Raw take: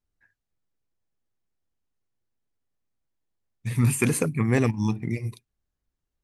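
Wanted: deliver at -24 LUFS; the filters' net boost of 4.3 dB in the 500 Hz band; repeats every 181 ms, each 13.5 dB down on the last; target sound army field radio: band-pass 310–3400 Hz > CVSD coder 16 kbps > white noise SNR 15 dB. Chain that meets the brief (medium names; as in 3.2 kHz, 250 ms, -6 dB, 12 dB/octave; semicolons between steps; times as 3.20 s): band-pass 310–3400 Hz; peaking EQ 500 Hz +6.5 dB; feedback delay 181 ms, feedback 21%, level -13.5 dB; CVSD coder 16 kbps; white noise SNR 15 dB; trim +5 dB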